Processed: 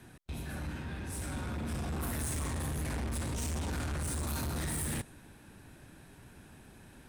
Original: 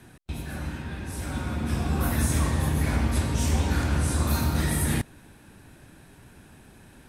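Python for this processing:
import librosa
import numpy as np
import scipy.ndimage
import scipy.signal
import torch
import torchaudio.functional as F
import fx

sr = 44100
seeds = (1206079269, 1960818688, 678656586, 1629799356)

y = fx.dynamic_eq(x, sr, hz=8900.0, q=1.5, threshold_db=-50.0, ratio=4.0, max_db=6)
y = 10.0 ** (-29.0 / 20.0) * np.tanh(y / 10.0 ** (-29.0 / 20.0))
y = y * librosa.db_to_amplitude(-3.5)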